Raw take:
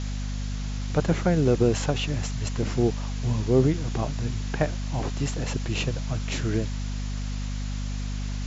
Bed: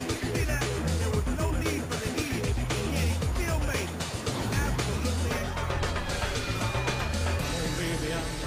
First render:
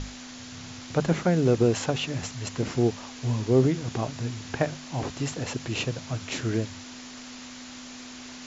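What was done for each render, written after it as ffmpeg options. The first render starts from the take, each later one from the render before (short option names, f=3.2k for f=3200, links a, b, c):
-af "bandreject=f=50:t=h:w=6,bandreject=f=100:t=h:w=6,bandreject=f=150:t=h:w=6,bandreject=f=200:t=h:w=6"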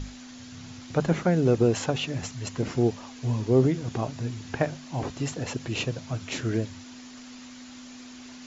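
-af "afftdn=nr=6:nf=-42"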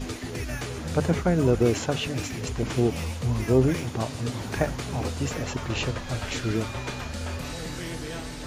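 -filter_complex "[1:a]volume=-4.5dB[a];[0:a][a]amix=inputs=2:normalize=0"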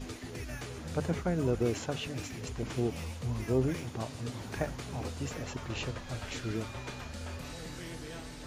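-af "volume=-8.5dB"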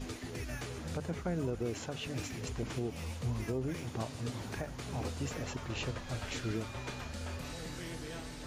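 -af "alimiter=level_in=1.5dB:limit=-24dB:level=0:latency=1:release=258,volume=-1.5dB"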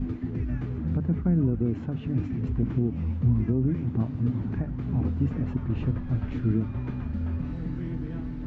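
-af "lowpass=1.6k,lowshelf=f=360:t=q:w=1.5:g=12"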